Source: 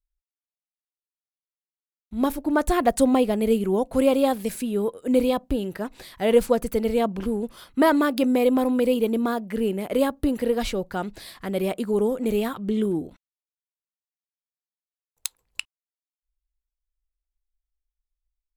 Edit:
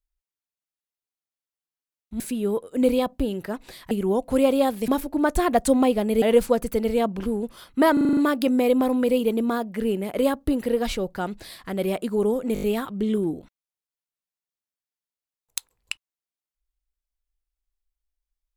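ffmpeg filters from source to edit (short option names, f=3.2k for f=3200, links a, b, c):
-filter_complex "[0:a]asplit=15[a][b][c][d][e][f][g][h][i][j][k][l][m][n][o];[a]atrim=end=2.202[p];[b]atrim=start=4.508:end=6.222[q];[c]atrim=start=3.538:end=4.512[r];[d]atrim=start=2.198:end=3.542[s];[e]atrim=start=6.218:end=7.972[t];[f]atrim=start=7.928:end=7.972[u];[g]atrim=start=7.928:end=7.972[v];[h]atrim=start=7.928:end=7.972[w];[i]atrim=start=7.928:end=7.972[x];[j]atrim=start=7.928:end=7.972[y];[k]atrim=start=7.928:end=12.322[z];[l]atrim=start=12.298:end=12.322[aa];[m]atrim=start=12.298:end=12.322[ab];[n]atrim=start=12.298:end=12.322[ac];[o]atrim=start=12.298[ad];[p][q]acrossfade=d=0.004:c1=hsin:c2=hsin[ae];[ae][r]acrossfade=d=0.004:c1=hsin:c2=hsin[af];[af][s]acrossfade=d=0.004:c1=hsin:c2=hsin[ag];[ag][t]acrossfade=d=0.004:c1=hsin:c2=hsin[ah];[ah][u]acrossfade=d=0.004:c1=hsin:c2=hsin[ai];[ai][v]acrossfade=d=0.004:c1=hsin:c2=hsin[aj];[aj][w]acrossfade=d=0.004:c1=hsin:c2=hsin[ak];[ak][x]acrossfade=d=0.004:c1=hsin:c2=hsin[al];[al][y]acrossfade=d=0.004:c1=hsin:c2=hsin[am];[am][z]acrossfade=d=0.004:c1=hsin:c2=hsin[an];[an][aa]acrossfade=d=0.004:c1=hsin:c2=hsin[ao];[ao][ab]acrossfade=d=0.004:c1=hsin:c2=hsin[ap];[ap][ac]acrossfade=d=0.004:c1=hsin:c2=hsin[aq];[aq][ad]acrossfade=d=0.004:c1=hsin:c2=hsin"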